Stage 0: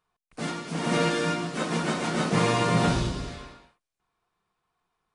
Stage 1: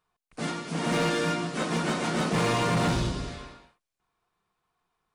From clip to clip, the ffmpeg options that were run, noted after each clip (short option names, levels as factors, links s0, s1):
-af "asoftclip=type=hard:threshold=0.0891"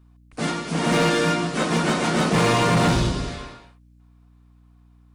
-af "aeval=exprs='val(0)+0.00126*(sin(2*PI*60*n/s)+sin(2*PI*2*60*n/s)/2+sin(2*PI*3*60*n/s)/3+sin(2*PI*4*60*n/s)/4+sin(2*PI*5*60*n/s)/5)':c=same,volume=2.11"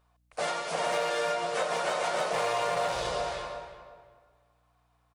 -filter_complex "[0:a]lowshelf=f=390:t=q:w=3:g=-13.5,asplit=2[s0][s1];[s1]adelay=357,lowpass=f=1800:p=1,volume=0.299,asplit=2[s2][s3];[s3]adelay=357,lowpass=f=1800:p=1,volume=0.29,asplit=2[s4][s5];[s5]adelay=357,lowpass=f=1800:p=1,volume=0.29[s6];[s0][s2][s4][s6]amix=inputs=4:normalize=0,acompressor=threshold=0.0631:ratio=4,volume=0.708"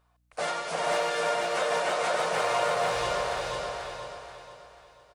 -af "equalizer=f=1500:t=o:w=0.77:g=2,aecho=1:1:486|972|1458|1944|2430:0.708|0.262|0.0969|0.0359|0.0133"